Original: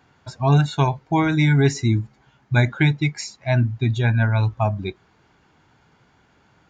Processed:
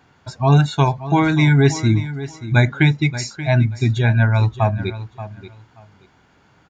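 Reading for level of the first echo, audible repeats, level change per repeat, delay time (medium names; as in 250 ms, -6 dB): -14.0 dB, 2, -14.0 dB, 580 ms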